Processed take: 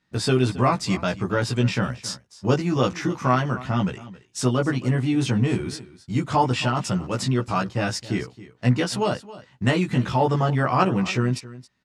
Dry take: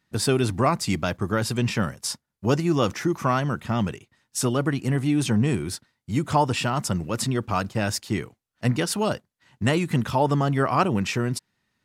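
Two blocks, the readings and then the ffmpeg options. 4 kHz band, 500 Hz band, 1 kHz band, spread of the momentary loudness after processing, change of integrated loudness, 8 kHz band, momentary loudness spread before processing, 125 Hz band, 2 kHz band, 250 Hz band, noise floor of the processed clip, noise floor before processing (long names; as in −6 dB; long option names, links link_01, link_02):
+0.5 dB, +1.0 dB, +1.5 dB, 8 LU, +1.0 dB, −3.5 dB, 8 LU, +2.0 dB, +1.5 dB, +1.0 dB, −59 dBFS, −81 dBFS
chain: -filter_complex "[0:a]lowpass=6600,asplit=2[link_01][link_02];[link_02]adelay=16,volume=-2dB[link_03];[link_01][link_03]amix=inputs=2:normalize=0,aecho=1:1:271:0.133,volume=-1dB"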